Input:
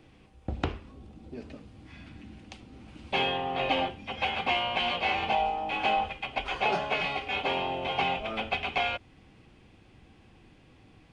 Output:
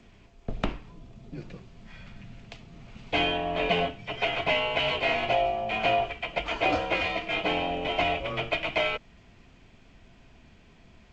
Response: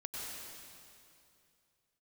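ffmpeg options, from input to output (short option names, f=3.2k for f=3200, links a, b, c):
-af "afreqshift=-94,volume=2dB" -ar 16000 -c:a g722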